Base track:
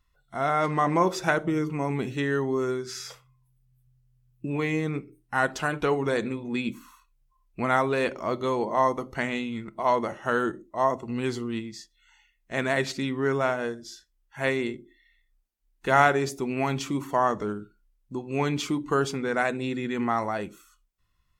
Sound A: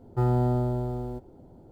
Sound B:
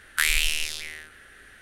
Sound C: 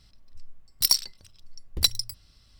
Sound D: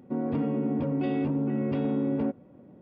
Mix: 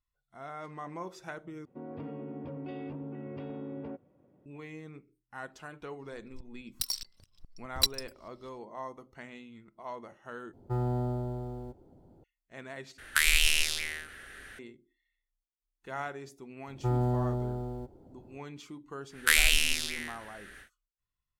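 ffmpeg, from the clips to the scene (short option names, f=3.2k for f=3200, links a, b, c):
-filter_complex "[1:a]asplit=2[a][b];[2:a]asplit=2[c][d];[0:a]volume=-18dB[e];[4:a]equalizer=f=220:t=o:w=0.64:g=-7.5[f];[3:a]aeval=exprs='val(0)*pow(10,-20*if(lt(mod(-4.8*n/s,1),2*abs(-4.8)/1000),1-mod(-4.8*n/s,1)/(2*abs(-4.8)/1000),(mod(-4.8*n/s,1)-2*abs(-4.8)/1000)/(1-2*abs(-4.8)/1000))/20)':c=same[g];[c]alimiter=level_in=7.5dB:limit=-1dB:release=50:level=0:latency=1[h];[e]asplit=4[i][j][k][l];[i]atrim=end=1.654[m];[f]atrim=end=2.81,asetpts=PTS-STARTPTS,volume=-10dB[n];[j]atrim=start=4.456:end=10.534[o];[a]atrim=end=1.71,asetpts=PTS-STARTPTS,volume=-7dB[p];[k]atrim=start=12.236:end=12.984[q];[h]atrim=end=1.61,asetpts=PTS-STARTPTS,volume=-6dB[r];[l]atrim=start=14.586[s];[g]atrim=end=2.59,asetpts=PTS-STARTPTS,volume=-2dB,afade=t=in:d=0.004:c=hsin,afade=t=out:st=2.586:d=0.004:c=hsin,adelay=5990[t];[b]atrim=end=1.71,asetpts=PTS-STARTPTS,volume=-4.5dB,afade=t=in:d=0.004:c=hsin,afade=t=out:st=1.706:d=0.004:c=hsin,adelay=16670[u];[d]atrim=end=1.61,asetpts=PTS-STARTPTS,volume=-0.5dB,afade=t=in:d=0.1,afade=t=out:st=1.51:d=0.1,adelay=19090[v];[m][n]acrossfade=d=0.004:c1=hsin:c2=hsin[w];[w][o]acrossfade=d=0.004:c1=hsin:c2=hsin[x];[x][p]acrossfade=d=0.004:c1=hsin:c2=hsin[y];[y][q]acrossfade=d=0.004:c1=hsin:c2=hsin[z];[z][r]acrossfade=d=0.004:c1=hsin:c2=hsin[aa];[aa][s]acrossfade=d=0.004:c1=hsin:c2=hsin[ab];[ab][t][u][v]amix=inputs=4:normalize=0"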